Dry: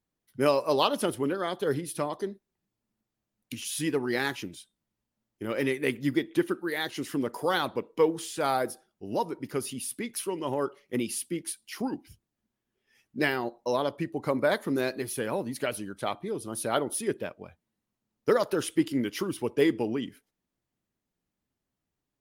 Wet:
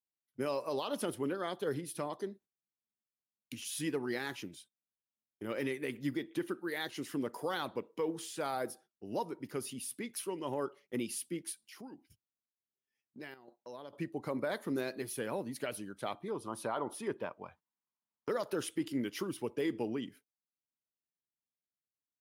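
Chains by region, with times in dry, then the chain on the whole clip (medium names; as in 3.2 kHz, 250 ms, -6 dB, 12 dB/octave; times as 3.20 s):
11.66–13.93 s: compression 2:1, threshold -48 dBFS + square tremolo 1.1 Hz, depth 65%, duty 85%
16.28–18.29 s: low-pass 3.5 kHz 6 dB/octave + peaking EQ 1 kHz +13 dB 0.7 oct + tape noise reduction on one side only encoder only
whole clip: gate -52 dBFS, range -17 dB; high-pass 91 Hz; peak limiter -18.5 dBFS; trim -6.5 dB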